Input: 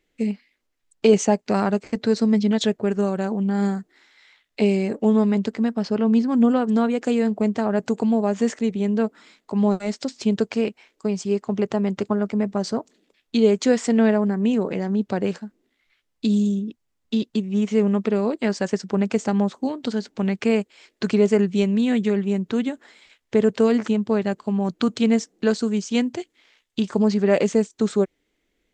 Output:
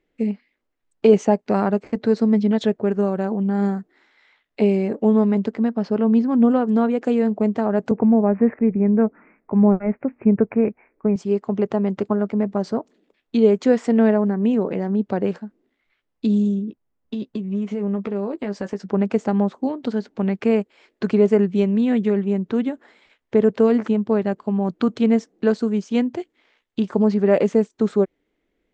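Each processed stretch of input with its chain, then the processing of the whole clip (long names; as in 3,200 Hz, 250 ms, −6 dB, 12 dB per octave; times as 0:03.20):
0:07.91–0:11.16: Butterworth low-pass 2,500 Hz 96 dB per octave + low-shelf EQ 140 Hz +11.5 dB
0:16.68–0:18.86: downward compressor 4 to 1, threshold −24 dBFS + double-tracking delay 15 ms −9 dB + one half of a high-frequency compander decoder only
whole clip: low-pass filter 1,100 Hz 6 dB per octave; low-shelf EQ 180 Hz −5 dB; level +3.5 dB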